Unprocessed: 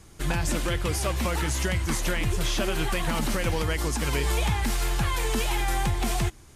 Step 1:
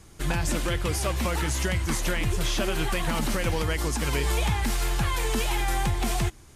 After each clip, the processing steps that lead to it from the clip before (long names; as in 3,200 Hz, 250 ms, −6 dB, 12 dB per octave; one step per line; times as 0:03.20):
no processing that can be heard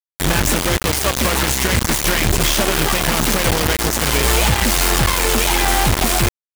upward compression, threshold −28 dBFS
bit reduction 4 bits
level +7.5 dB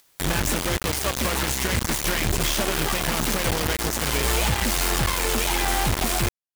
upward compression, threshold −20 dBFS
level −7 dB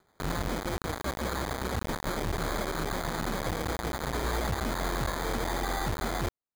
decimation without filtering 16×
level −8 dB